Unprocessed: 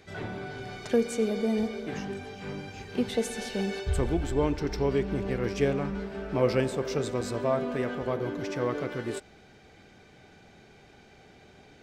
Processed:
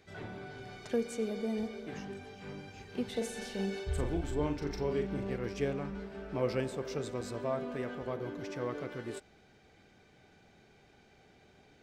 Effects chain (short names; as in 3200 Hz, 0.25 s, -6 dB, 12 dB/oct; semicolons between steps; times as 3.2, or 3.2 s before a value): 3.12–5.36 doubler 41 ms -5.5 dB; gain -7.5 dB